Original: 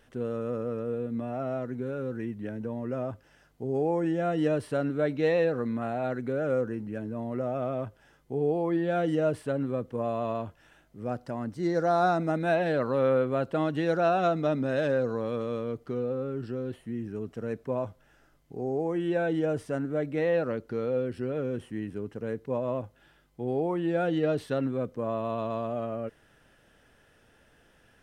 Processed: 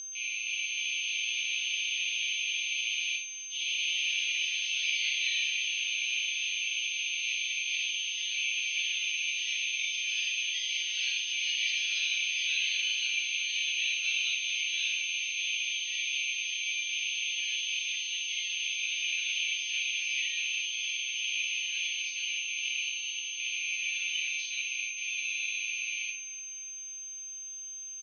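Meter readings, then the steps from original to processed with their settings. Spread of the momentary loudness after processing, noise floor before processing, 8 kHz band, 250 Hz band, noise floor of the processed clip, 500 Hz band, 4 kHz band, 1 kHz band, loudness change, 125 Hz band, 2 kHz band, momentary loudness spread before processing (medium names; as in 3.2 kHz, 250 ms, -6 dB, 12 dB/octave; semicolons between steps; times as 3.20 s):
5 LU, -63 dBFS, no reading, under -40 dB, -42 dBFS, under -40 dB, +22.5 dB, under -40 dB, 0.0 dB, under -40 dB, +11.0 dB, 10 LU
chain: rattle on loud lows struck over -43 dBFS, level -30 dBFS; resampled via 16 kHz; peaking EQ 5.9 kHz +7 dB 1.9 oct; ever faster or slower copies 320 ms, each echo +2 st, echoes 3; simulated room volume 490 m³, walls furnished, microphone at 7.1 m; whistle 6.3 kHz -22 dBFS; rippled Chebyshev high-pass 2.3 kHz, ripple 3 dB; distance through air 300 m; feedback delay 295 ms, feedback 54%, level -16.5 dB; trim +5 dB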